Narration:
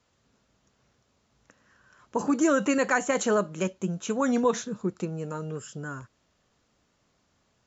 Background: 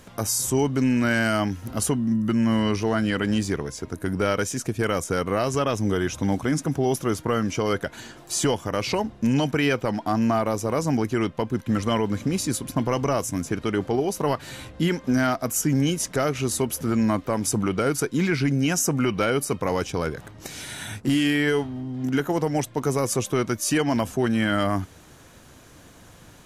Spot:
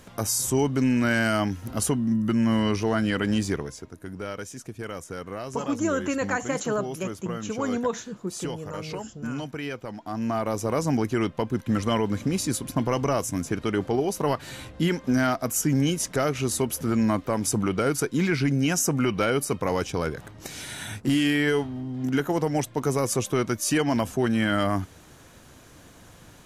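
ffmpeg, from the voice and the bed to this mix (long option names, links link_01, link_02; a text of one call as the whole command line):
ffmpeg -i stem1.wav -i stem2.wav -filter_complex "[0:a]adelay=3400,volume=-3dB[link_01];[1:a]volume=9dB,afade=type=out:start_time=3.53:duration=0.38:silence=0.316228,afade=type=in:start_time=10.04:duration=0.62:silence=0.316228[link_02];[link_01][link_02]amix=inputs=2:normalize=0" out.wav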